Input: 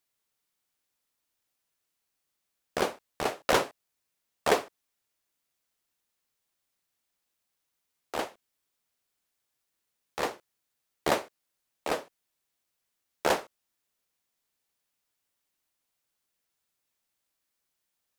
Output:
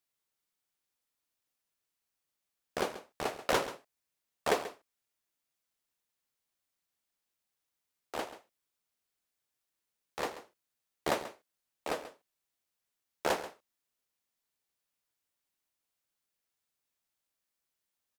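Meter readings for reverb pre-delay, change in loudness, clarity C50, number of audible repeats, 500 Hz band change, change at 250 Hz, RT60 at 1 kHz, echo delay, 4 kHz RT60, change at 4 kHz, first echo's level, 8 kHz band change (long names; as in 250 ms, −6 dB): no reverb audible, −5.0 dB, no reverb audible, 1, −5.0 dB, −5.0 dB, no reverb audible, 135 ms, no reverb audible, −5.0 dB, −14.0 dB, −5.0 dB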